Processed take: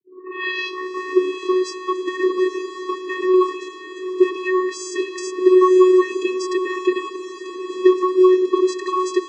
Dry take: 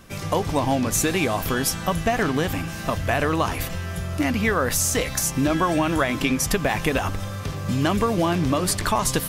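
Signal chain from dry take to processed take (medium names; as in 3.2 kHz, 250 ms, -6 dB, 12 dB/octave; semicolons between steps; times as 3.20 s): tape start-up on the opening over 1.78 s; vocoder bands 16, square 369 Hz; echo that smears into a reverb 902 ms, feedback 43%, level -11 dB; trim +5.5 dB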